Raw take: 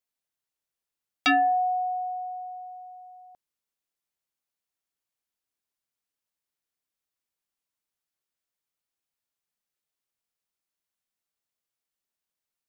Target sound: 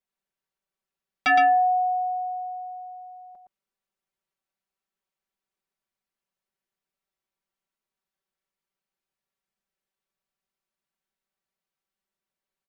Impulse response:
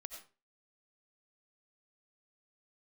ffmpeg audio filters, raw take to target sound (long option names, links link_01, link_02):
-af "highshelf=frequency=3700:gain=-11.5,aecho=1:1:5.2:0.99,aecho=1:1:115:0.596"